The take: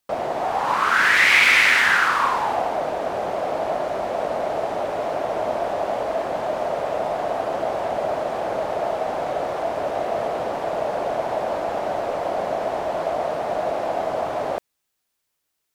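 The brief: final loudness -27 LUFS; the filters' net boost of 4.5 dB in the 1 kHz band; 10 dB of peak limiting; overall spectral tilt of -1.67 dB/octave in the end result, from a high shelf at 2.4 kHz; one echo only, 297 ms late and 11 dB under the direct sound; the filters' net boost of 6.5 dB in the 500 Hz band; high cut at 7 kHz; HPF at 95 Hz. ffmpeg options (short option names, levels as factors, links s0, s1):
-af "highpass=95,lowpass=7000,equalizer=f=500:t=o:g=7.5,equalizer=f=1000:t=o:g=3.5,highshelf=f=2400:g=-3,alimiter=limit=0.224:level=0:latency=1,aecho=1:1:297:0.282,volume=0.501"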